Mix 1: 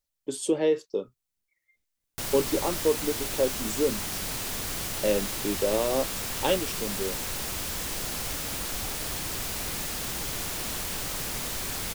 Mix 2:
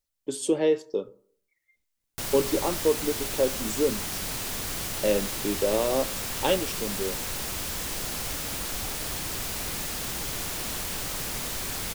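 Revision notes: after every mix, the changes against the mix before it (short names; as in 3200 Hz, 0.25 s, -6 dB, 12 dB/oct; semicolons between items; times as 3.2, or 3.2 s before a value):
reverb: on, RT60 0.55 s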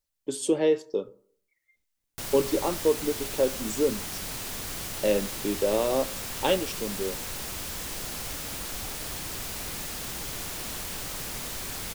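background -3.0 dB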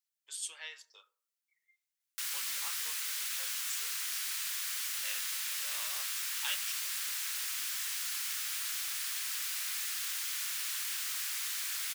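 speech -4.5 dB; master: add HPF 1400 Hz 24 dB/oct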